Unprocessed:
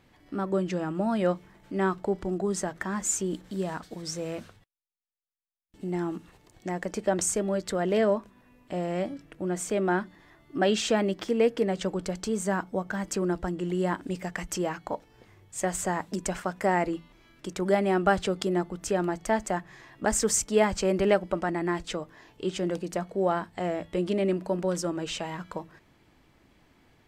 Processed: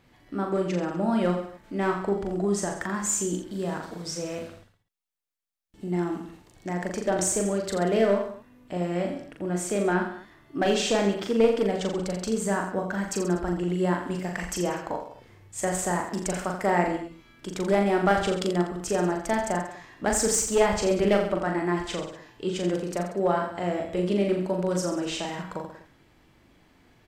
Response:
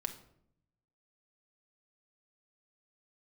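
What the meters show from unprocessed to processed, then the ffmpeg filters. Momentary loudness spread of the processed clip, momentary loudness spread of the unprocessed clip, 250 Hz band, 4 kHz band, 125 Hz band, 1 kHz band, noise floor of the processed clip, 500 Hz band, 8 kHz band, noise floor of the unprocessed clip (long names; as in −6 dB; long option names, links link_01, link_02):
12 LU, 12 LU, +2.0 dB, +2.0 dB, +2.5 dB, +2.0 dB, −60 dBFS, +2.0 dB, +2.0 dB, −63 dBFS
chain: -af "aeval=exprs='clip(val(0),-1,0.1)':channel_layout=same,aecho=1:1:40|84|132.4|185.6|244.2:0.631|0.398|0.251|0.158|0.1"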